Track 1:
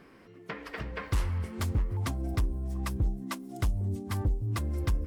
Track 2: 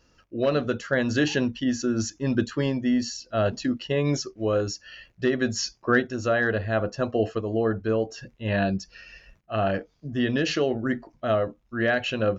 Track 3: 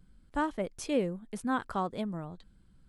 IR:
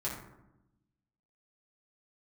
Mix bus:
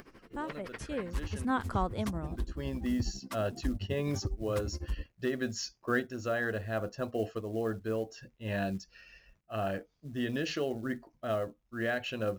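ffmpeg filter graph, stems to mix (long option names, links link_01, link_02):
-filter_complex "[0:a]acompressor=mode=upward:threshold=-40dB:ratio=2.5,tremolo=f=12:d=0.95,volume=-4dB[link_01];[1:a]acrusher=bits=7:mode=log:mix=0:aa=0.000001,volume=-9dB[link_02];[2:a]afade=type=in:start_time=1.26:duration=0.2:silence=0.398107,asplit=2[link_03][link_04];[link_04]apad=whole_len=546396[link_05];[link_02][link_05]sidechaincompress=threshold=-50dB:ratio=12:attack=16:release=475[link_06];[link_01][link_06][link_03]amix=inputs=3:normalize=0"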